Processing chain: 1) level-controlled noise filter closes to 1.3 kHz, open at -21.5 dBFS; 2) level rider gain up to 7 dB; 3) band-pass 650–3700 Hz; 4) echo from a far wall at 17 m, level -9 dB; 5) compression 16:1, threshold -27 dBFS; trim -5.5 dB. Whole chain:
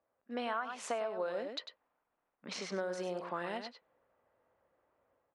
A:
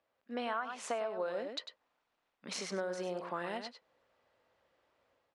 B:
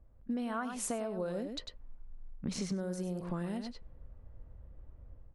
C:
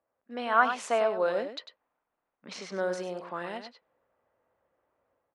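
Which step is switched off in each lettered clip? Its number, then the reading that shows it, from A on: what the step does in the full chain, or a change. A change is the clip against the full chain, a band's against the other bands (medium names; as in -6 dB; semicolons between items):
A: 1, 8 kHz band +2.5 dB; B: 3, 125 Hz band +15.0 dB; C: 5, mean gain reduction 4.5 dB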